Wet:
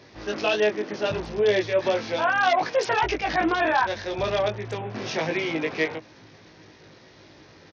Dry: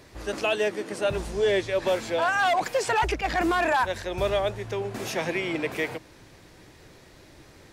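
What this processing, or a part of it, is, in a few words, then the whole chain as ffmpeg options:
Bluetooth headset: -filter_complex "[0:a]highpass=100,asplit=2[s0][s1];[s1]adelay=19,volume=0.708[s2];[s0][s2]amix=inputs=2:normalize=0,aresample=16000,aresample=44100" -ar 48000 -c:a sbc -b:a 64k

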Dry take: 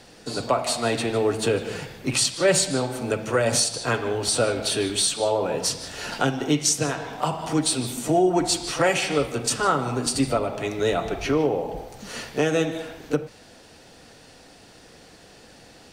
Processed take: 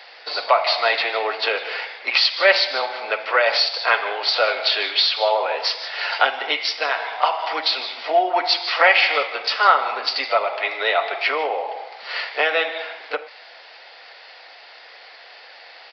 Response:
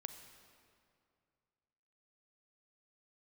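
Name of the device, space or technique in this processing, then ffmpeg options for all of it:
musical greeting card: -af "aresample=11025,aresample=44100,highpass=f=640:w=0.5412,highpass=f=640:w=1.3066,equalizer=f=2100:t=o:w=0.29:g=8,volume=2.51"

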